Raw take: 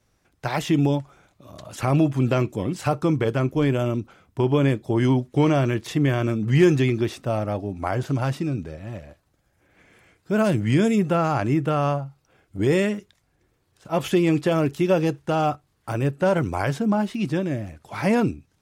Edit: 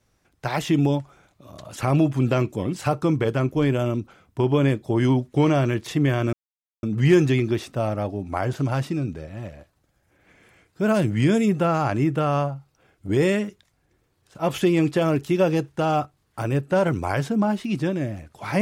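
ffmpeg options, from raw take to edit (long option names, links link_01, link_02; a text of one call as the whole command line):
ffmpeg -i in.wav -filter_complex "[0:a]asplit=2[link_01][link_02];[link_01]atrim=end=6.33,asetpts=PTS-STARTPTS,afade=type=out:start_time=6.326:duration=0.004:curve=hsin,apad=pad_dur=0.5[link_03];[link_02]atrim=start=6.33,asetpts=PTS-STARTPTS,afade=type=in:duration=0.004:curve=hsin[link_04];[link_03][link_04]concat=n=2:v=0:a=1" out.wav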